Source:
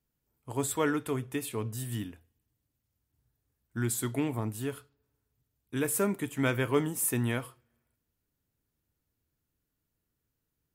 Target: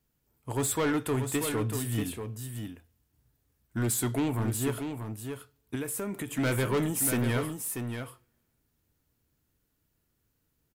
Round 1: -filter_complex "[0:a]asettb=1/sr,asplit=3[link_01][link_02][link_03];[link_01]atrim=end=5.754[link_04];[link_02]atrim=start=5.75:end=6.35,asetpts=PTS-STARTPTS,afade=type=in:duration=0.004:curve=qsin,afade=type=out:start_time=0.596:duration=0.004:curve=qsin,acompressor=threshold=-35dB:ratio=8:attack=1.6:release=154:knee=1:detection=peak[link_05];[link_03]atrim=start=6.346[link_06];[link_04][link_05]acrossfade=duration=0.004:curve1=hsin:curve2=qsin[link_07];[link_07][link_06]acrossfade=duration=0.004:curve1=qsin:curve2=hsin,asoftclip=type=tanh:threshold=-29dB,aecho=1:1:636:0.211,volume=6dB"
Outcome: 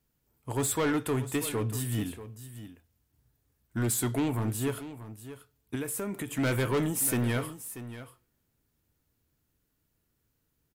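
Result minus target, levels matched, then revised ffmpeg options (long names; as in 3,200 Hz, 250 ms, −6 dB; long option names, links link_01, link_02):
echo-to-direct −6.5 dB
-filter_complex "[0:a]asettb=1/sr,asplit=3[link_01][link_02][link_03];[link_01]atrim=end=5.754[link_04];[link_02]atrim=start=5.75:end=6.35,asetpts=PTS-STARTPTS,afade=type=in:duration=0.004:curve=qsin,afade=type=out:start_time=0.596:duration=0.004:curve=qsin,acompressor=threshold=-35dB:ratio=8:attack=1.6:release=154:knee=1:detection=peak[link_05];[link_03]atrim=start=6.346[link_06];[link_04][link_05]acrossfade=duration=0.004:curve1=hsin:curve2=qsin[link_07];[link_07][link_06]acrossfade=duration=0.004:curve1=qsin:curve2=hsin,asoftclip=type=tanh:threshold=-29dB,aecho=1:1:636:0.447,volume=6dB"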